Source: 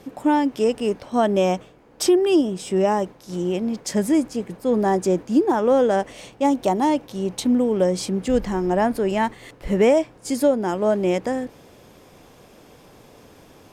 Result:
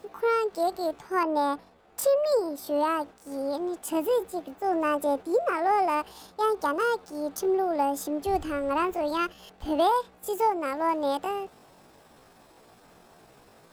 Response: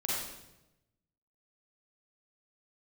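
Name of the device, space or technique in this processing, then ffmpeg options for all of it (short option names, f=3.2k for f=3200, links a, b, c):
chipmunk voice: -filter_complex "[0:a]asetrate=68011,aresample=44100,atempo=0.64842,asettb=1/sr,asplit=3[a][b][c];[a]atrim=end=1.234[d];[b]atrim=start=1.23:end=2.32,asetpts=PTS-STARTPTS,afade=t=in:d=0.004:c=qsin,afade=t=out:st=1.086:d=0.004:c=qsin,adynamicequalizer=threshold=0.0112:dfrequency=2800:dqfactor=0.7:tfrequency=2800:tqfactor=0.7:attack=5:release=100:ratio=0.375:range=3:mode=cutabove:tftype=highshelf[e];[c]atrim=start=2.316[f];[d][e]acrossfade=d=0.004:c1=hsin:c2=qsin[g];[g][f]acrossfade=d=0.004:c1=qsin:c2=hsin,volume=-6.5dB"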